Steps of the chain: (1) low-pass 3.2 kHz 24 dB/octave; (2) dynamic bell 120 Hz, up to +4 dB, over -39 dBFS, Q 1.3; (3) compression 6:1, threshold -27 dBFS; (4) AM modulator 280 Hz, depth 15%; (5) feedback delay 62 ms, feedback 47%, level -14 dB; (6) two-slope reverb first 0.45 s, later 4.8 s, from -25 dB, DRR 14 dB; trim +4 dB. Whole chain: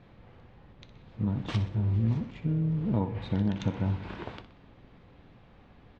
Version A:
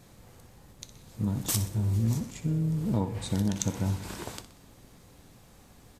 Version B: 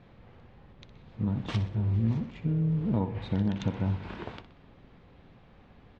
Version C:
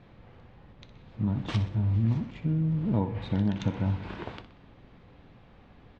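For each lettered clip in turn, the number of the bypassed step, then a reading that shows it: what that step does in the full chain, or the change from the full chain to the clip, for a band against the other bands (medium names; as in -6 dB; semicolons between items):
1, 4 kHz band +6.0 dB; 6, echo-to-direct -10.5 dB to -13.0 dB; 4, loudness change +1.0 LU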